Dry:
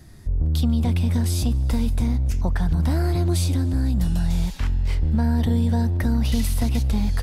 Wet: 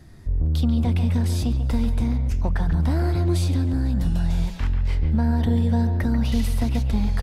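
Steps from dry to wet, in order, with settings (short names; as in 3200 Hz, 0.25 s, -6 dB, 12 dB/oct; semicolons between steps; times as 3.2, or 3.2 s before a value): high shelf 5200 Hz -8.5 dB; notches 60/120/180 Hz; speakerphone echo 0.14 s, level -8 dB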